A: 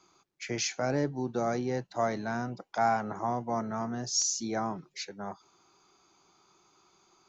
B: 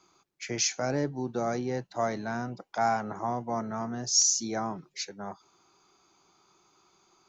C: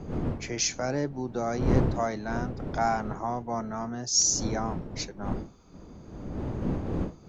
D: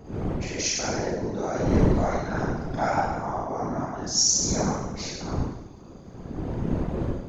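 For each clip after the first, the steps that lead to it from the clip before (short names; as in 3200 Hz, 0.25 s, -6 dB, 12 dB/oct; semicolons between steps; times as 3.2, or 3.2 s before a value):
dynamic EQ 6100 Hz, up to +6 dB, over -47 dBFS, Q 1.4
wind noise 270 Hz -33 dBFS
Schroeder reverb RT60 0.94 s, combs from 32 ms, DRR -5.5 dB; whisperiser; gain -3.5 dB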